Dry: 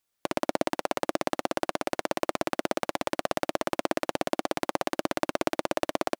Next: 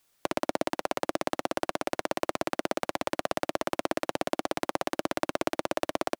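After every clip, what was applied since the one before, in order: three-band squash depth 40%; gain -1.5 dB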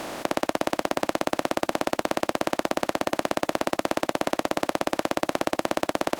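per-bin compression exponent 0.2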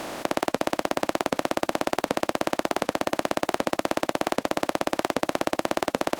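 record warp 78 rpm, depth 250 cents

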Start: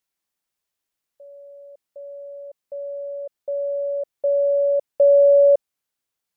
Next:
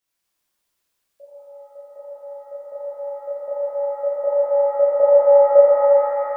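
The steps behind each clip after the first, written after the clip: shimmer reverb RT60 3.2 s, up +7 st, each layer -8 dB, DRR -10.5 dB; gain -2.5 dB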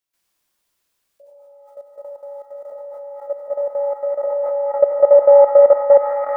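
level quantiser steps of 13 dB; gain +6 dB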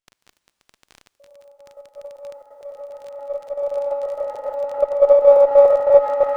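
reverse delay 0.145 s, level -1 dB; crackle 30/s -27 dBFS; running maximum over 3 samples; gain -4.5 dB

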